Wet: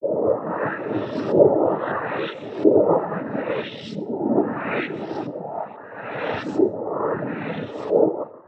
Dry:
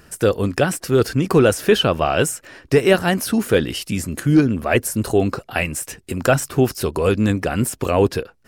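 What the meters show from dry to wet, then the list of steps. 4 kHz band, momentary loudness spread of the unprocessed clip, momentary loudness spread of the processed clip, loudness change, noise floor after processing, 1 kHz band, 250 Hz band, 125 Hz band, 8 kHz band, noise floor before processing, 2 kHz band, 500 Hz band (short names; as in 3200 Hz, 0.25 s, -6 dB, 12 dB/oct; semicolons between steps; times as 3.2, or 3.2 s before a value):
-14.0 dB, 7 LU, 13 LU, -4.0 dB, -39 dBFS, -2.0 dB, -5.0 dB, -13.0 dB, under -30 dB, -53 dBFS, -7.5 dB, -2.0 dB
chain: spectral swells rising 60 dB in 1.78 s; HPF 170 Hz 24 dB/oct; high shelf 5300 Hz -5.5 dB; in parallel at -3 dB: limiter -8 dBFS, peak gain reduction 9.5 dB; on the sum: dispersion highs, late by 0.107 s, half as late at 800 Hz; on a send: echo with dull and thin repeats by turns 0.19 s, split 820 Hz, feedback 75%, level -14 dB; on the sum: half-wave rectifier; LFO low-pass saw up 0.76 Hz 470–5300 Hz; plate-style reverb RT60 1.1 s, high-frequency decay 0.55×, pre-delay 75 ms, DRR 12.5 dB; noise vocoder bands 12; spectral expander 1.5:1; gain -5 dB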